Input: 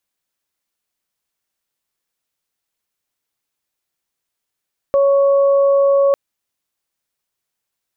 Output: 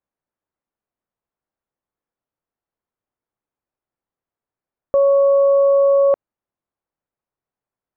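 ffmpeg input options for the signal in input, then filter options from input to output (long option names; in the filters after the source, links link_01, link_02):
-f lavfi -i "aevalsrc='0.316*sin(2*PI*556*t)+0.0631*sin(2*PI*1112*t)':duration=1.2:sample_rate=44100"
-af "lowpass=1100"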